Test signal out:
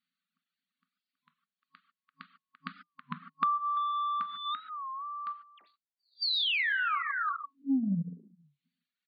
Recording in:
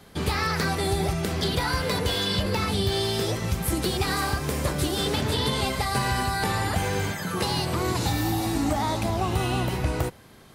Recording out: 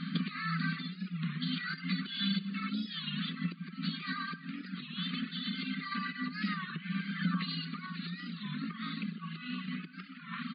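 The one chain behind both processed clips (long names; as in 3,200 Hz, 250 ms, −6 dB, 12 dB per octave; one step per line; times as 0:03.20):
low-shelf EQ 340 Hz +11.5 dB
brick-wall band-stop 270–1,100 Hz
dynamic equaliser 2,100 Hz, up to +3 dB, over −40 dBFS, Q 1.5
far-end echo of a speakerphone 340 ms, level −11 dB
reverb whose tail is shaped and stops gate 170 ms flat, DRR 3.5 dB
downward compressor 16 to 1, threshold −34 dBFS
soft clipping −23.5 dBFS
reverb reduction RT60 1.3 s
brick-wall band-pass 160–4,700 Hz
wow of a warped record 33 1/3 rpm, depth 160 cents
level +9 dB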